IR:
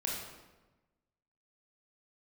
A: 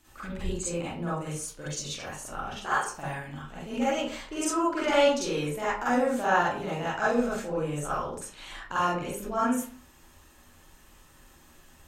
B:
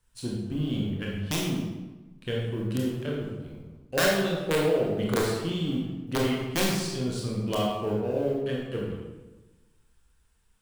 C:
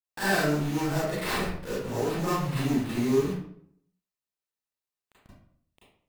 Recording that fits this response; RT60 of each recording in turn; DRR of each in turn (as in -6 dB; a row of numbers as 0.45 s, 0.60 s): B; 0.45 s, 1.2 s, 0.60 s; -9.5 dB, -3.0 dB, -10.5 dB